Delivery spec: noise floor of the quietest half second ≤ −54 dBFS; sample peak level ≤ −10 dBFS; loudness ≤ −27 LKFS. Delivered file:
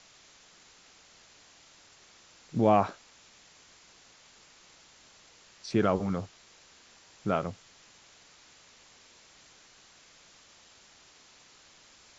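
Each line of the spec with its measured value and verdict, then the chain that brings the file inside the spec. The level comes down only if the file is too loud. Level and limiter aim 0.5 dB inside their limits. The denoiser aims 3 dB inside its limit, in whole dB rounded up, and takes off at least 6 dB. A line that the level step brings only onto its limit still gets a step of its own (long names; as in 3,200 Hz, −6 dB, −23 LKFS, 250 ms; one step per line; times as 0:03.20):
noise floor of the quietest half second −58 dBFS: in spec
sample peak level −11.0 dBFS: in spec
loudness −29.0 LKFS: in spec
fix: no processing needed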